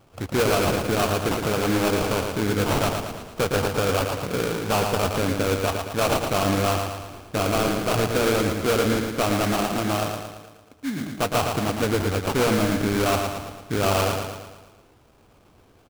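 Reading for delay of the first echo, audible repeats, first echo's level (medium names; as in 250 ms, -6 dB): 113 ms, 6, -5.0 dB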